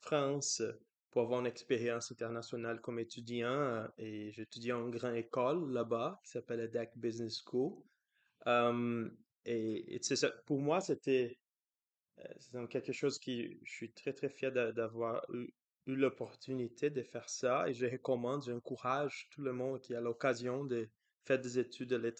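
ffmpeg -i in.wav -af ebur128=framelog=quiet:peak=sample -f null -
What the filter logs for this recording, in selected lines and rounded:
Integrated loudness:
  I:         -38.5 LUFS
  Threshold: -48.7 LUFS
Loudness range:
  LRA:         3.0 LU
  Threshold: -59.0 LUFS
  LRA low:   -40.6 LUFS
  LRA high:  -37.6 LUFS
Sample peak:
  Peak:      -19.0 dBFS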